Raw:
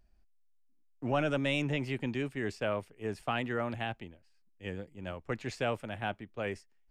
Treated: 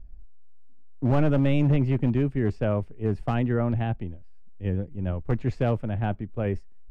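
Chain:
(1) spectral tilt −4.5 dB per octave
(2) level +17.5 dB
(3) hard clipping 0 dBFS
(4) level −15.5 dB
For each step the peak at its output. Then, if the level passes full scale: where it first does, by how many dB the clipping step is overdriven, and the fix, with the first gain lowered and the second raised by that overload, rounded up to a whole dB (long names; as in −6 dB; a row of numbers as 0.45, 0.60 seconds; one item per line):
−12.0, +5.5, 0.0, −15.5 dBFS
step 2, 5.5 dB
step 2 +11.5 dB, step 4 −9.5 dB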